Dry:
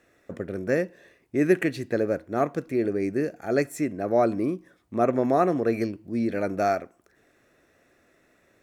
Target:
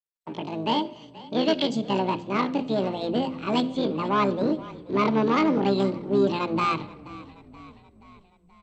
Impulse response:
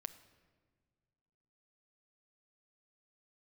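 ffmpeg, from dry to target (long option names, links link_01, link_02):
-filter_complex "[0:a]agate=range=-45dB:threshold=-52dB:ratio=16:detection=peak,bandreject=frequency=50:width_type=h:width=6,bandreject=frequency=100:width_type=h:width=6,bandreject=frequency=150:width_type=h:width=6,bandreject=frequency=200:width_type=h:width=6,bandreject=frequency=250:width_type=h:width=6,bandreject=frequency=300:width_type=h:width=6,bandreject=frequency=350:width_type=h:width=6,bandreject=frequency=400:width_type=h:width=6,asubboost=boost=3:cutoff=240,asetrate=76340,aresample=44100,atempo=0.577676,asoftclip=type=tanh:threshold=-16.5dB,asplit=2[link_01][link_02];[link_02]asetrate=29433,aresample=44100,atempo=1.49831,volume=-11dB[link_03];[link_01][link_03]amix=inputs=2:normalize=0,highpass=130,equalizer=frequency=250:width_type=q:width=4:gain=4,equalizer=frequency=490:width_type=q:width=4:gain=-7,equalizer=frequency=720:width_type=q:width=4:gain=-9,equalizer=frequency=1100:width_type=q:width=4:gain=-4,equalizer=frequency=1900:width_type=q:width=4:gain=-7,lowpass=frequency=6000:width=0.5412,lowpass=frequency=6000:width=1.3066,asplit=6[link_04][link_05][link_06][link_07][link_08][link_09];[link_05]adelay=478,afreqshift=-38,volume=-19dB[link_10];[link_06]adelay=956,afreqshift=-76,volume=-23.9dB[link_11];[link_07]adelay=1434,afreqshift=-114,volume=-28.8dB[link_12];[link_08]adelay=1912,afreqshift=-152,volume=-33.6dB[link_13];[link_09]adelay=2390,afreqshift=-190,volume=-38.5dB[link_14];[link_04][link_10][link_11][link_12][link_13][link_14]amix=inputs=6:normalize=0,asplit=2[link_15][link_16];[1:a]atrim=start_sample=2205[link_17];[link_16][link_17]afir=irnorm=-1:irlink=0,volume=1dB[link_18];[link_15][link_18]amix=inputs=2:normalize=0" -ar 32000 -c:a mp2 -b:a 64k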